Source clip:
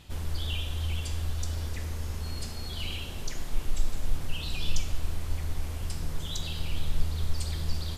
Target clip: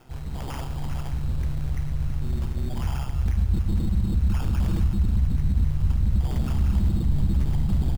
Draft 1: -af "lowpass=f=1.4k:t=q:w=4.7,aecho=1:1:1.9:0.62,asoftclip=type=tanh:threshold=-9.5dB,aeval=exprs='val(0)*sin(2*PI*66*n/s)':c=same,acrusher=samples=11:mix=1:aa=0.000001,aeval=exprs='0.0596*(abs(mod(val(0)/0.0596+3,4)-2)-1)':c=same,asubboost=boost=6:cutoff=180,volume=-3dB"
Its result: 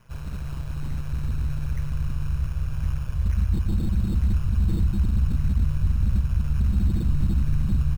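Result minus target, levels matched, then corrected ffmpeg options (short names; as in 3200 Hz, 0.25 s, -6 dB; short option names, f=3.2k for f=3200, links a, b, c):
1000 Hz band -5.5 dB
-af "lowpass=f=4k:t=q:w=4.7,aecho=1:1:1.9:0.62,asoftclip=type=tanh:threshold=-9.5dB,aeval=exprs='val(0)*sin(2*PI*66*n/s)':c=same,acrusher=samples=11:mix=1:aa=0.000001,aeval=exprs='0.0596*(abs(mod(val(0)/0.0596+3,4)-2)-1)':c=same,asubboost=boost=6:cutoff=180,volume=-3dB"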